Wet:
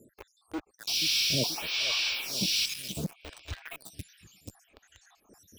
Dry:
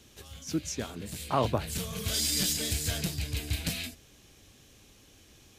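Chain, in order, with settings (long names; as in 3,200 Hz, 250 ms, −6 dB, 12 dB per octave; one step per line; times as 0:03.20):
time-frequency cells dropped at random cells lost 79%
high-pass filter 45 Hz 6 dB per octave
parametric band 4,100 Hz −5.5 dB 0.58 octaves
reversed playback
upward compression, threshold −40 dBFS
reversed playback
treble cut that deepens with the level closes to 2,600 Hz, closed at −29.5 dBFS
sound drawn into the spectrogram noise, 0:00.87–0:02.66, 2,200–5,900 Hz −29 dBFS
delay with a low-pass on its return 481 ms, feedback 49%, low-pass 2,800 Hz, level −13 dB
in parallel at −4 dB: log-companded quantiser 2 bits
on the sum: phaser with staggered stages 0.66 Hz
level −2 dB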